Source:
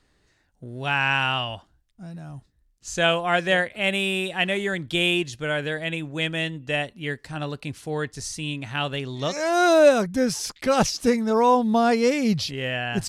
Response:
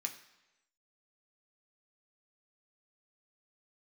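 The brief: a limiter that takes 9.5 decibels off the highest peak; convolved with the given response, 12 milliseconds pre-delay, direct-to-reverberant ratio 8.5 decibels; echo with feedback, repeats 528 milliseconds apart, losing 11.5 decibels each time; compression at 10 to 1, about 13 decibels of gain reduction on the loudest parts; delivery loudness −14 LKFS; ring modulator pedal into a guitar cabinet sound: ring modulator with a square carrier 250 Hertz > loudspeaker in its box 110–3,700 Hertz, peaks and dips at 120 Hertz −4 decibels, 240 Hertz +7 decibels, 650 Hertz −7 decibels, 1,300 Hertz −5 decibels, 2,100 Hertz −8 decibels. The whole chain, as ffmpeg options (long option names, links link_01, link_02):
-filter_complex "[0:a]acompressor=threshold=-24dB:ratio=10,alimiter=limit=-23.5dB:level=0:latency=1,aecho=1:1:528|1056|1584:0.266|0.0718|0.0194,asplit=2[link_01][link_02];[1:a]atrim=start_sample=2205,adelay=12[link_03];[link_02][link_03]afir=irnorm=-1:irlink=0,volume=-8dB[link_04];[link_01][link_04]amix=inputs=2:normalize=0,aeval=exprs='val(0)*sgn(sin(2*PI*250*n/s))':channel_layout=same,highpass=110,equalizer=frequency=120:width_type=q:width=4:gain=-4,equalizer=frequency=240:width_type=q:width=4:gain=7,equalizer=frequency=650:width_type=q:width=4:gain=-7,equalizer=frequency=1300:width_type=q:width=4:gain=-5,equalizer=frequency=2100:width_type=q:width=4:gain=-8,lowpass=frequency=3700:width=0.5412,lowpass=frequency=3700:width=1.3066,volume=21dB"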